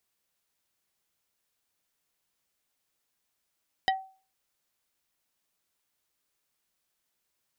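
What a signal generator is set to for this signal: wood hit plate, lowest mode 765 Hz, decay 0.38 s, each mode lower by 2.5 dB, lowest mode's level -20 dB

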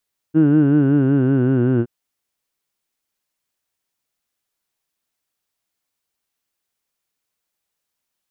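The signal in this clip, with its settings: formant vowel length 1.52 s, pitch 153 Hz, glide -4 st, F1 320 Hz, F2 1500 Hz, F3 2800 Hz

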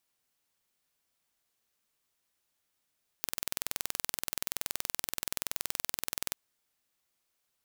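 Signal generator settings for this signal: pulse train 21.1/s, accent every 0, -4.5 dBFS 3.09 s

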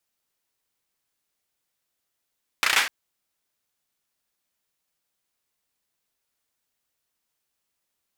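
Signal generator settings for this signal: hand clap length 0.25 s, bursts 5, apart 33 ms, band 1800 Hz, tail 0.41 s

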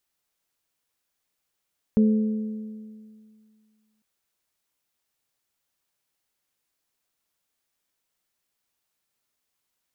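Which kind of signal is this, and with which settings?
metal hit bell, length 2.05 s, lowest mode 216 Hz, modes 3, decay 2.13 s, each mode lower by 11 dB, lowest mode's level -14 dB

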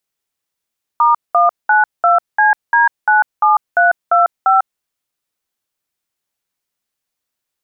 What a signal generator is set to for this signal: DTMF "*192CD97325", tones 0.147 s, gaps 0.199 s, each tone -10.5 dBFS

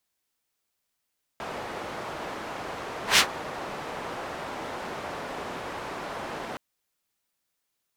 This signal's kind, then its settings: whoosh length 5.17 s, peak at 1.78, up 0.13 s, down 0.10 s, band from 790 Hz, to 3300 Hz, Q 0.77, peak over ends 19.5 dB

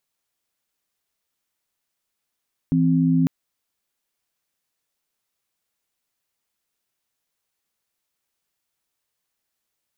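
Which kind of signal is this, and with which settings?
chord E3/C4 sine, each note -18 dBFS 0.55 s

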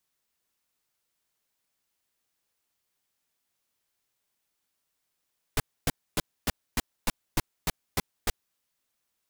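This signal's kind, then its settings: noise bursts pink, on 0.03 s, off 0.27 s, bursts 10, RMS -24.5 dBFS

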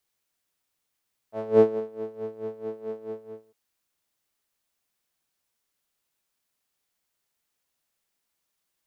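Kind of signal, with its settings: synth patch with tremolo A3, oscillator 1 saw, oscillator 2 square, interval -12 st, detune 15 cents, oscillator 2 level -8 dB, filter bandpass, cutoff 450 Hz, Q 5, filter envelope 0.5 oct, filter decay 0.20 s, filter sustain 5%, attack 0.308 s, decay 0.18 s, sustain -18 dB, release 0.52 s, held 1.69 s, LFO 4.6 Hz, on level 16 dB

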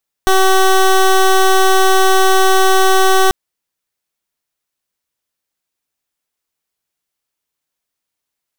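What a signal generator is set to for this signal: pulse 380 Hz, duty 16% -9.5 dBFS 3.04 s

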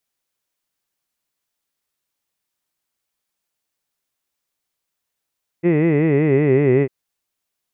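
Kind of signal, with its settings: formant-synthesis vowel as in hid, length 1.25 s, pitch 164 Hz, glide -4 st, vibrato depth 1.35 st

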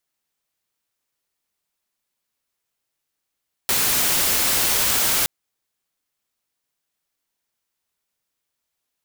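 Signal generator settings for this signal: noise white, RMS -19.5 dBFS 1.57 s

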